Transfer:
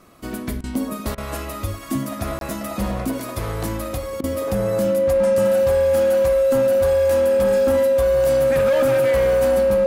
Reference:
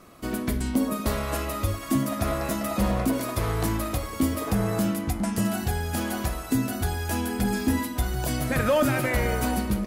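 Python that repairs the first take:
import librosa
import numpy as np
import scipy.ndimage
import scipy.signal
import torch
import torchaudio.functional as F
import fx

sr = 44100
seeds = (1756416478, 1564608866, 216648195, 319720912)

y = fx.fix_declip(x, sr, threshold_db=-13.5)
y = fx.notch(y, sr, hz=540.0, q=30.0)
y = fx.fix_interpolate(y, sr, at_s=(2.39,), length_ms=22.0)
y = fx.fix_interpolate(y, sr, at_s=(0.61, 1.15, 4.21), length_ms=27.0)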